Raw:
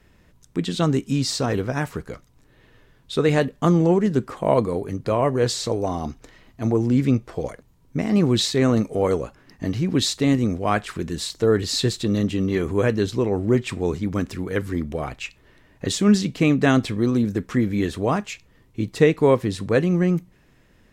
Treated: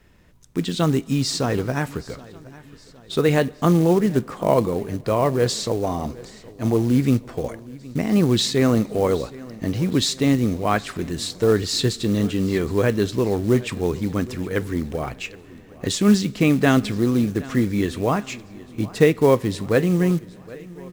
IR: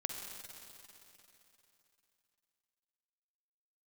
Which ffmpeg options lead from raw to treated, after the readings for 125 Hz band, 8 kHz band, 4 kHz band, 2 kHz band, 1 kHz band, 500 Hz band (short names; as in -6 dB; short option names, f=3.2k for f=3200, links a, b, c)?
+0.5 dB, +1.0 dB, +1.0 dB, +1.0 dB, +1.0 dB, +1.0 dB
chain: -filter_complex "[0:a]acrusher=bits=6:mode=log:mix=0:aa=0.000001,aecho=1:1:768|1536|2304|3072:0.0944|0.0481|0.0246|0.0125,asplit=2[a][b];[1:a]atrim=start_sample=2205[c];[b][c]afir=irnorm=-1:irlink=0,volume=-20.5dB[d];[a][d]amix=inputs=2:normalize=0"